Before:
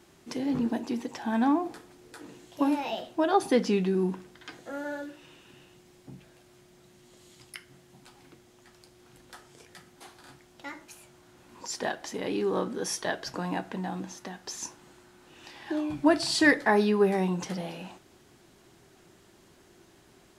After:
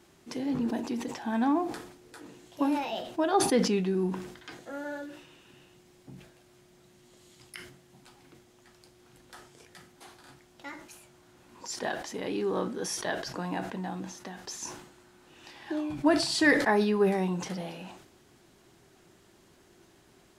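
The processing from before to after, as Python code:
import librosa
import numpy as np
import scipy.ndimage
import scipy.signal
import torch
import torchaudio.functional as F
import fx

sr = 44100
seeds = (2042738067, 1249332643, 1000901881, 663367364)

y = fx.sustainer(x, sr, db_per_s=74.0)
y = y * 10.0 ** (-2.0 / 20.0)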